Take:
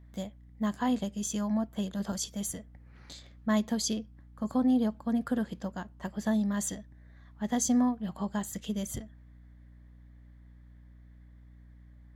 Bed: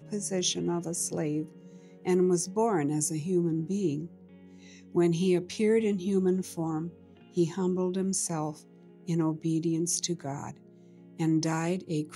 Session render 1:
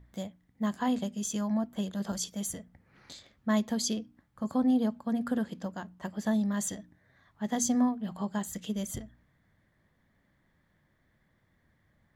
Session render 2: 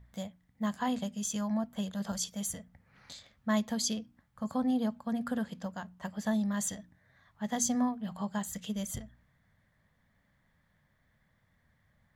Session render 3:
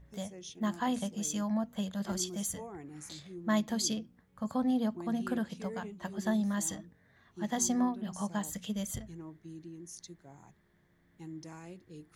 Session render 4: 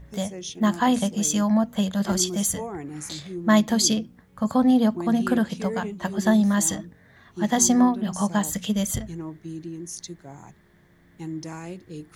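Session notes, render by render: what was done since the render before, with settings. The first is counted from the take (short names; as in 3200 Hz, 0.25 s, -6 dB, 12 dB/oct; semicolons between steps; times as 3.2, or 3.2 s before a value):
de-hum 60 Hz, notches 5
bell 340 Hz -10.5 dB 0.68 oct
add bed -18.5 dB
gain +11.5 dB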